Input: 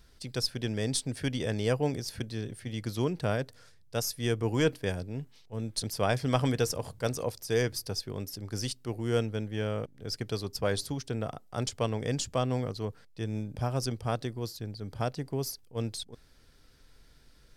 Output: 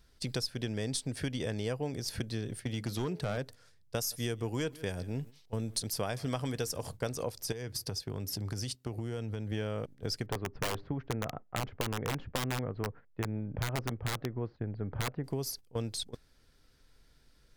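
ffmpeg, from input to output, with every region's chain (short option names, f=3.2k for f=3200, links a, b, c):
-filter_complex "[0:a]asettb=1/sr,asplit=3[a][b][c];[a]atrim=end=2.634[d];[b]atrim=start=2.63:end=3.38,asetpts=PTS-STARTPTS,afade=t=in:d=0.004:c=qsin,afade=t=out:st=0.746:d=0.004:c=qsin,highpass=62,bandreject=f=214.2:t=h:w=4,bandreject=f=428.4:t=h:w=4,bandreject=f=642.6:t=h:w=4,bandreject=f=856.8:t=h:w=4,asoftclip=type=hard:threshold=-26dB[e];[c]atrim=start=3.376[f];[d][e]acrossfade=d=0.004:c1=hsin:c2=qsin[g];[g][f]acrossfade=d=0.004:c1=qsin:c2=hsin,asettb=1/sr,asplit=3[h][i][j];[h]atrim=end=3.964[k];[i]atrim=start=3.96:end=6.9,asetpts=PTS-STARTPTS,afade=t=in:d=0.004:c=qsin,afade=t=out:st=2.936:d=0.004:c=qsin,highshelf=f=6.1k:g=6,aecho=1:1:152:0.0631,atrim=end_sample=129654[l];[j]atrim=start=6.896[m];[k][l]acrossfade=d=0.004:c1=hsin:c2=qsin[n];[n][m]acrossfade=d=0.004:c1=qsin:c2=hsin,asettb=1/sr,asplit=3[o][p][q];[o]atrim=end=7.524[r];[p]atrim=start=7.52:end=9.52,asetpts=PTS-STARTPTS,afade=t=in:d=0.004:c=qsin,afade=t=out:st=1.996:d=0.004:c=qsin,highpass=f=45:w=0.5412,highpass=f=45:w=1.3066,lowshelf=f=120:g=7.5,acompressor=threshold=-37dB:ratio=10:attack=3.2:release=140:knee=1:detection=peak[s];[q]atrim=start=9.516[t];[r][s]acrossfade=d=0.004:c1=hsin:c2=qsin[u];[u][t]acrossfade=d=0.004:c1=qsin:c2=hsin,asettb=1/sr,asplit=3[v][w][x];[v]atrim=end=10.264[y];[w]atrim=start=10.26:end=15.24,asetpts=PTS-STARTPTS,afade=t=in:d=0.004:c=qsin,afade=t=out:st=4.976:d=0.004:c=qsin,lowpass=f=2k:w=0.5412,lowpass=f=2k:w=1.3066,aeval=exprs='(mod(15*val(0)+1,2)-1)/15':c=same[z];[x]atrim=start=15.236[aa];[y][z]acrossfade=d=0.004:c1=hsin:c2=qsin[ab];[ab][aa]acrossfade=d=0.004:c1=qsin:c2=hsin,agate=range=-12dB:threshold=-44dB:ratio=16:detection=peak,acompressor=threshold=-39dB:ratio=6,volume=7dB"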